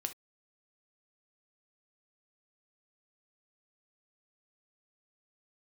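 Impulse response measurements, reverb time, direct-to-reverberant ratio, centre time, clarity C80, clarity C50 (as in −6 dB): non-exponential decay, 7.0 dB, 6 ms, 47.0 dB, 14.0 dB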